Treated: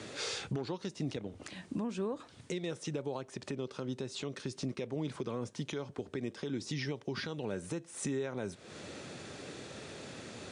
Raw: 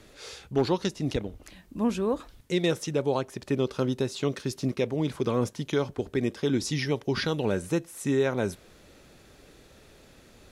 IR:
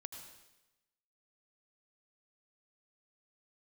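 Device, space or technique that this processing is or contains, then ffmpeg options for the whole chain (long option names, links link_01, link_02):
podcast mastering chain: -af "highpass=frequency=97:width=0.5412,highpass=frequency=97:width=1.3066,deesser=0.8,acompressor=threshold=-41dB:ratio=3,alimiter=level_in=11.5dB:limit=-24dB:level=0:latency=1:release=316,volume=-11.5dB,volume=9dB" -ar 22050 -c:a libmp3lame -b:a 96k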